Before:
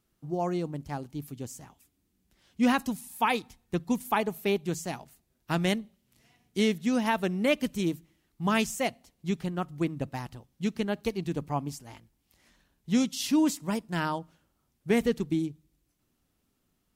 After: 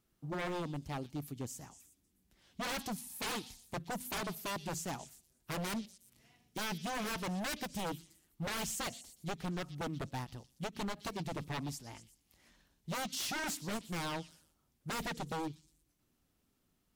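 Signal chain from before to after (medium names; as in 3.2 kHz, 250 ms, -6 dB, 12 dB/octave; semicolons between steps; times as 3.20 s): wavefolder -30 dBFS; repeats whose band climbs or falls 120 ms, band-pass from 4.2 kHz, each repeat 0.7 oct, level -9.5 dB; endings held to a fixed fall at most 370 dB/s; trim -2.5 dB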